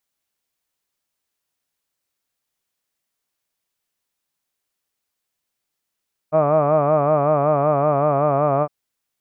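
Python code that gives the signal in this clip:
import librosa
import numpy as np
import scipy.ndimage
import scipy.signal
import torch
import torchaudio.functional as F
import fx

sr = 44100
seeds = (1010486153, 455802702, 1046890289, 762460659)

y = fx.vowel(sr, seeds[0], length_s=2.36, word='hud', hz=151.0, glide_st=-1.0, vibrato_hz=5.3, vibrato_st=0.9)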